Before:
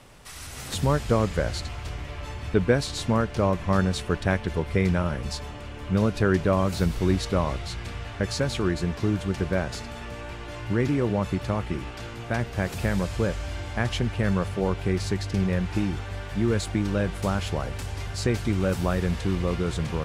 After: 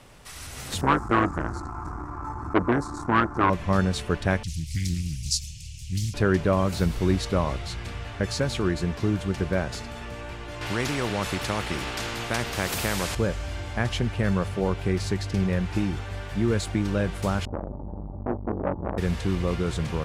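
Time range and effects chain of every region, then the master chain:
0:00.81–0:03.50: drawn EQ curve 200 Hz 0 dB, 330 Hz +14 dB, 510 Hz −17 dB, 820 Hz +11 dB, 1,300 Hz +13 dB, 1,800 Hz −8 dB, 3,000 Hz −29 dB, 5,600 Hz −9 dB, 8,200 Hz −6 dB, 14,000 Hz −14 dB + saturating transformer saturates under 1,100 Hz
0:04.43–0:06.14: Chebyshev band-stop filter 160–2,500 Hz, order 4 + high shelf with overshoot 4,200 Hz +11.5 dB, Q 1.5 + highs frequency-modulated by the lows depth 0.61 ms
0:10.61–0:13.15: parametric band 7,300 Hz −4.5 dB 2.1 octaves + every bin compressed towards the loudest bin 2 to 1
0:17.45–0:18.98: Butterworth low-pass 920 Hz 48 dB per octave + comb filter 3.5 ms, depth 84% + saturating transformer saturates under 730 Hz
whole clip: no processing

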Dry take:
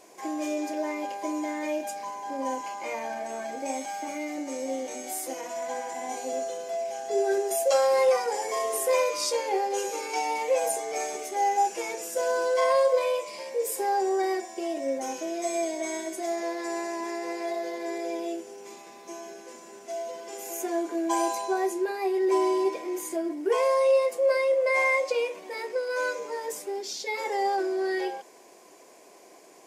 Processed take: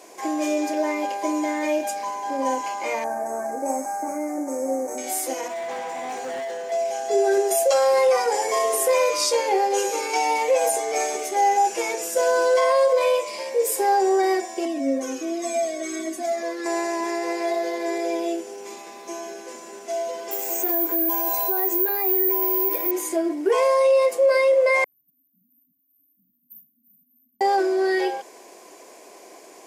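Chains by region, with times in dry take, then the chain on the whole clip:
0:03.04–0:04.98: variable-slope delta modulation 64 kbit/s + Butterworth band-reject 3,300 Hz, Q 0.56
0:05.48–0:06.72: high-shelf EQ 4,500 Hz −9.5 dB + gain into a clipping stage and back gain 35 dB
0:14.65–0:16.66: Butterworth band-reject 920 Hz, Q 3.4 + hollow resonant body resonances 260/1,100 Hz, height 16 dB, ringing for 90 ms + flanger whose copies keep moving one way falling 1.4 Hz
0:20.31–0:22.91: Bessel low-pass filter 9,900 Hz + bad sample-rate conversion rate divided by 3×, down filtered, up zero stuff
0:24.84–0:27.41: linear-phase brick-wall band-stop 260–13,000 Hz + parametric band 230 Hz −10 dB 1.1 octaves + single-tap delay 80 ms −19.5 dB
whole clip: high-pass filter 210 Hz; brickwall limiter −18.5 dBFS; level +7 dB

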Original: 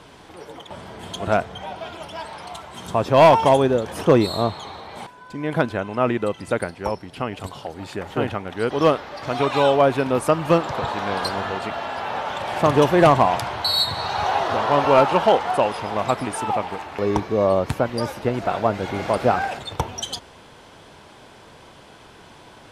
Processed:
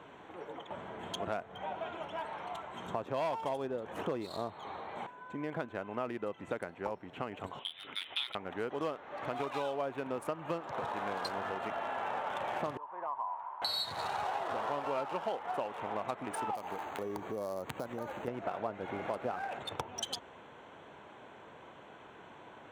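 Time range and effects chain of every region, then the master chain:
0:07.59–0:08.35: high-pass filter 340 Hz 6 dB per octave + voice inversion scrambler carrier 3,900 Hz
0:12.77–0:13.62: resonant band-pass 980 Hz, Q 9.8 + downward compressor 1.5 to 1, threshold −35 dBFS
0:16.55–0:18.28: downward compressor 3 to 1, threshold −28 dBFS + bad sample-rate conversion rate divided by 8×, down none, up hold
whole clip: adaptive Wiener filter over 9 samples; downward compressor 6 to 1, threshold −28 dBFS; high-pass filter 260 Hz 6 dB per octave; level −4.5 dB

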